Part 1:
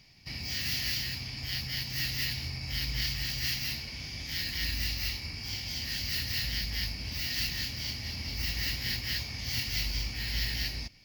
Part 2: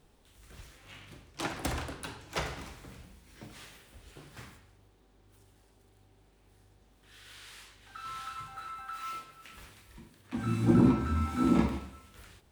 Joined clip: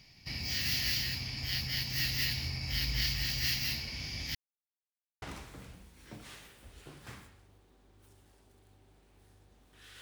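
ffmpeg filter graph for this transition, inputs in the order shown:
ffmpeg -i cue0.wav -i cue1.wav -filter_complex "[0:a]apad=whole_dur=10.01,atrim=end=10.01,asplit=2[link_01][link_02];[link_01]atrim=end=4.35,asetpts=PTS-STARTPTS,afade=type=out:start_time=4.346:duration=0.004:curve=hsin[link_03];[link_02]atrim=start=4.35:end=5.22,asetpts=PTS-STARTPTS,volume=0[link_04];[1:a]atrim=start=2.52:end=7.31,asetpts=PTS-STARTPTS,afade=type=in:duration=0.004:curve=hsin[link_05];[link_03][link_04][link_05]concat=n=3:v=0:a=1" out.wav

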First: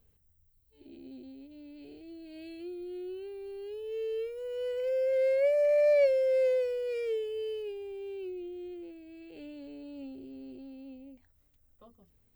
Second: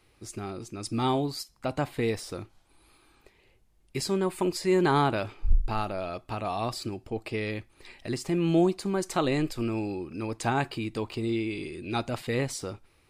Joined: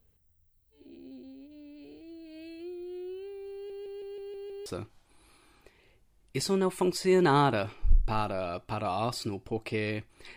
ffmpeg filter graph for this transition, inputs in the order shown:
ffmpeg -i cue0.wav -i cue1.wav -filter_complex "[0:a]apad=whole_dur=10.36,atrim=end=10.36,asplit=7[link_01][link_02][link_03][link_04][link_05][link_06][link_07];[link_01]atrim=end=3.702[link_08];[link_02]atrim=start=3.538:end=3.702[link_09];[link_03]atrim=start=3.538:end=3.702[link_10];[link_04]atrim=start=3.538:end=3.702[link_11];[link_05]atrim=start=3.538:end=3.702[link_12];[link_06]atrim=start=3.538:end=3.702[link_13];[link_07]atrim=start=3.538:end=3.702[link_14];[1:a]atrim=start=2.258:end=7.96[link_15];[link_08][link_09]acrossfade=duration=0.004:curve1=hsin:curve2=hsin[link_16];[link_16][link_10]acrossfade=duration=0.004:curve1=hsin:curve2=hsin[link_17];[link_17][link_11]acrossfade=duration=0.004:curve1=hsin:curve2=hsin[link_18];[link_18][link_12]acrossfade=duration=0.004:curve1=hsin:curve2=hsin[link_19];[link_19][link_13]acrossfade=duration=0.004:curve1=hsin:curve2=hsin[link_20];[link_20][link_14]acrossfade=duration=0.004:curve1=hsin:curve2=hsin[link_21];[link_21][link_15]acrossfade=duration=0.004:curve1=hsin:curve2=hsin" out.wav

